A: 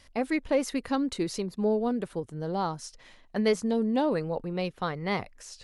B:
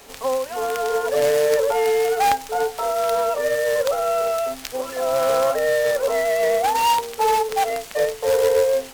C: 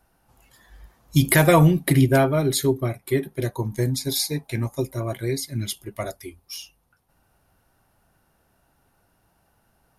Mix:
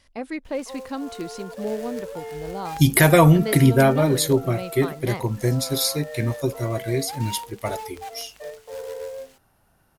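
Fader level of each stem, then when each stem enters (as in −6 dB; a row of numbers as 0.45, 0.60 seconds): −3.0, −16.0, +1.5 decibels; 0.00, 0.45, 1.65 seconds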